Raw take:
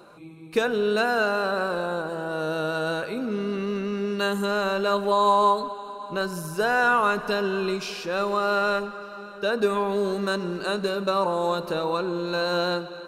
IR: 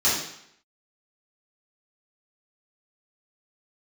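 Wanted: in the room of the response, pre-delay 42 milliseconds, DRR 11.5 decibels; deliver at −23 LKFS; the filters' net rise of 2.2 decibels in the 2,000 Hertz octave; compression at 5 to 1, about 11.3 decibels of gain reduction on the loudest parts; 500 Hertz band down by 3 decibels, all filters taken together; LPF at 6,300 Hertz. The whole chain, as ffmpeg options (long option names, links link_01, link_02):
-filter_complex "[0:a]lowpass=6300,equalizer=frequency=500:width_type=o:gain=-4,equalizer=frequency=2000:width_type=o:gain=4,acompressor=threshold=-29dB:ratio=5,asplit=2[link_01][link_02];[1:a]atrim=start_sample=2205,adelay=42[link_03];[link_02][link_03]afir=irnorm=-1:irlink=0,volume=-26.5dB[link_04];[link_01][link_04]amix=inputs=2:normalize=0,volume=9dB"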